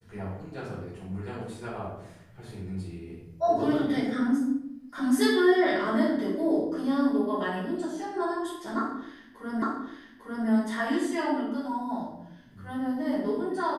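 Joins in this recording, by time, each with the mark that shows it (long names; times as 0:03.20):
0:09.62: the same again, the last 0.85 s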